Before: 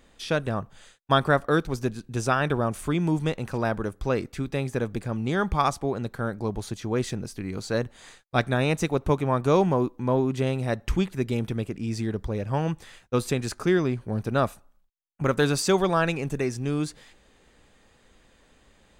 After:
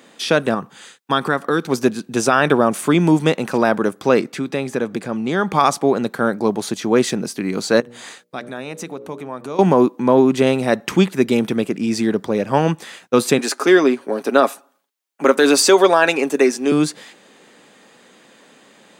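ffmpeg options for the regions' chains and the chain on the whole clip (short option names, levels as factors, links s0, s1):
-filter_complex "[0:a]asettb=1/sr,asplit=3[s0][s1][s2];[s0]atrim=end=0.544[s3];[s1]atrim=start=0.54:end=1.68,asetpts=PTS-STARTPTS,afade=t=in:d=0.004:c=qsin,afade=t=out:st=1.136:d=0.004:c=qsin,equalizer=f=620:t=o:w=0.26:g=-11,acompressor=threshold=0.0316:ratio=2:attack=3.2:release=140:knee=1:detection=peak[s4];[s2]atrim=start=1.676[s5];[s3][s4]acrossfade=d=0.004:c1=hsin:c2=qsin[s6];[s6][s5]acrossfade=d=0.004:c1=qsin:c2=hsin,asettb=1/sr,asplit=3[s7][s8][s9];[s7]atrim=end=4.204[s10];[s8]atrim=start=4.2:end=5.52,asetpts=PTS-STARTPTS,afade=t=in:d=0.004:c=qsin,afade=t=out:st=1.316:d=0.004:c=qsin,highshelf=f=11000:g=-8,acompressor=threshold=0.02:ratio=1.5:attack=3.2:release=140:knee=1:detection=peak[s11];[s9]atrim=start=5.516[s12];[s10][s11]acrossfade=d=0.004:c1=hsin:c2=qsin[s13];[s13][s12]acrossfade=d=0.004:c1=qsin:c2=hsin,asettb=1/sr,asplit=3[s14][s15][s16];[s14]atrim=end=7.804[s17];[s15]atrim=start=7.8:end=9.59,asetpts=PTS-STARTPTS,afade=t=in:d=0.004:c=qsin,afade=t=out:st=1.786:d=0.004:c=qsin,bandreject=f=60:t=h:w=6,bandreject=f=120:t=h:w=6,bandreject=f=180:t=h:w=6,bandreject=f=240:t=h:w=6,bandreject=f=300:t=h:w=6,bandreject=f=360:t=h:w=6,bandreject=f=420:t=h:w=6,bandreject=f=480:t=h:w=6,bandreject=f=540:t=h:w=6,bandreject=f=600:t=h:w=6,acompressor=threshold=0.00794:ratio=3:attack=3.2:release=140:knee=1:detection=peak[s18];[s16]atrim=start=9.586[s19];[s17][s18]acrossfade=d=0.004:c1=hsin:c2=qsin[s20];[s20][s19]acrossfade=d=0.004:c1=qsin:c2=hsin,asettb=1/sr,asplit=3[s21][s22][s23];[s21]atrim=end=13.384[s24];[s22]atrim=start=13.38:end=16.72,asetpts=PTS-STARTPTS,afade=t=in:d=0.004:c=qsin,afade=t=out:st=3.336:d=0.004:c=qsin,highpass=f=260:w=0.5412,highpass=f=260:w=1.3066,aecho=1:1:7.3:0.41,atrim=end_sample=147294[s25];[s23]atrim=start=16.716[s26];[s24][s25]acrossfade=d=0.004:c1=hsin:c2=qsin[s27];[s27][s26]acrossfade=d=0.004:c1=qsin:c2=hsin,highpass=f=180:w=0.5412,highpass=f=180:w=1.3066,alimiter=level_in=4.47:limit=0.891:release=50:level=0:latency=1,volume=0.891"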